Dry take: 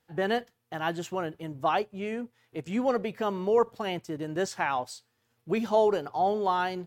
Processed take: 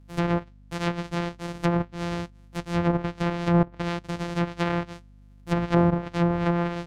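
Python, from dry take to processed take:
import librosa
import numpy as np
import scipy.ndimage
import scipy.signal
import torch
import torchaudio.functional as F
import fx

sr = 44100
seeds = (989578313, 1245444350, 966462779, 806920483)

y = np.r_[np.sort(x[:len(x) // 256 * 256].reshape(-1, 256), axis=1).ravel(), x[len(x) // 256 * 256:]]
y = fx.add_hum(y, sr, base_hz=50, snr_db=25)
y = fx.env_lowpass_down(y, sr, base_hz=1000.0, full_db=-21.0)
y = y * 10.0 ** (3.5 / 20.0)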